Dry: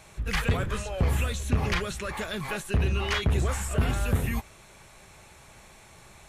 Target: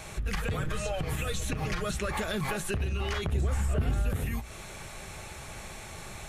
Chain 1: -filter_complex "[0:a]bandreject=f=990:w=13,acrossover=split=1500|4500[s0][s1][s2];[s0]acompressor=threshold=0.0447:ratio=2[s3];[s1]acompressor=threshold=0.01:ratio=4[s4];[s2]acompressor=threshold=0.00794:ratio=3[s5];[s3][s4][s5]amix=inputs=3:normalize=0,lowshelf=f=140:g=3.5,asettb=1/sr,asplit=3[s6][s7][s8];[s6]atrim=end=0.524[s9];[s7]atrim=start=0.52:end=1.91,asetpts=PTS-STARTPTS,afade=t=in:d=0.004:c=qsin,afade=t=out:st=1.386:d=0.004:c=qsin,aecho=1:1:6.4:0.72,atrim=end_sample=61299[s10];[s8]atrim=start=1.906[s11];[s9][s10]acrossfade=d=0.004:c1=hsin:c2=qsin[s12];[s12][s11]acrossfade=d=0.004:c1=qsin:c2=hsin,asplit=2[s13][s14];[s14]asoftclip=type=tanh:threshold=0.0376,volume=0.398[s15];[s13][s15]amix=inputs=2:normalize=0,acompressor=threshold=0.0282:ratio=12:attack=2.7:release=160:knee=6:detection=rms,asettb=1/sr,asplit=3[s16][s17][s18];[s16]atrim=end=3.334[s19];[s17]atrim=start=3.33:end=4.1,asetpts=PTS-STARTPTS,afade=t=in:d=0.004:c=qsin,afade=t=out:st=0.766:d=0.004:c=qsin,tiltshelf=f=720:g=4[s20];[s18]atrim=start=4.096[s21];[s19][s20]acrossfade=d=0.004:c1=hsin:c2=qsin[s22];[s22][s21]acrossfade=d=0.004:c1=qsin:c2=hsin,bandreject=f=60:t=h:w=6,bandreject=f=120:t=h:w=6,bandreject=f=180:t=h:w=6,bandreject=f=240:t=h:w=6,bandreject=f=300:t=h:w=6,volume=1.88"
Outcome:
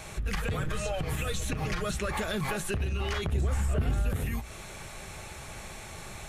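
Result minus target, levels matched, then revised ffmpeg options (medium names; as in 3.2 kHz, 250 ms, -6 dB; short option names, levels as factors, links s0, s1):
saturation: distortion +13 dB
-filter_complex "[0:a]bandreject=f=990:w=13,acrossover=split=1500|4500[s0][s1][s2];[s0]acompressor=threshold=0.0447:ratio=2[s3];[s1]acompressor=threshold=0.01:ratio=4[s4];[s2]acompressor=threshold=0.00794:ratio=3[s5];[s3][s4][s5]amix=inputs=3:normalize=0,lowshelf=f=140:g=3.5,asettb=1/sr,asplit=3[s6][s7][s8];[s6]atrim=end=0.524[s9];[s7]atrim=start=0.52:end=1.91,asetpts=PTS-STARTPTS,afade=t=in:d=0.004:c=qsin,afade=t=out:st=1.386:d=0.004:c=qsin,aecho=1:1:6.4:0.72,atrim=end_sample=61299[s10];[s8]atrim=start=1.906[s11];[s9][s10]acrossfade=d=0.004:c1=hsin:c2=qsin[s12];[s12][s11]acrossfade=d=0.004:c1=qsin:c2=hsin,asplit=2[s13][s14];[s14]asoftclip=type=tanh:threshold=0.141,volume=0.398[s15];[s13][s15]amix=inputs=2:normalize=0,acompressor=threshold=0.0282:ratio=12:attack=2.7:release=160:knee=6:detection=rms,asettb=1/sr,asplit=3[s16][s17][s18];[s16]atrim=end=3.334[s19];[s17]atrim=start=3.33:end=4.1,asetpts=PTS-STARTPTS,afade=t=in:d=0.004:c=qsin,afade=t=out:st=0.766:d=0.004:c=qsin,tiltshelf=f=720:g=4[s20];[s18]atrim=start=4.096[s21];[s19][s20]acrossfade=d=0.004:c1=hsin:c2=qsin[s22];[s22][s21]acrossfade=d=0.004:c1=qsin:c2=hsin,bandreject=f=60:t=h:w=6,bandreject=f=120:t=h:w=6,bandreject=f=180:t=h:w=6,bandreject=f=240:t=h:w=6,bandreject=f=300:t=h:w=6,volume=1.88"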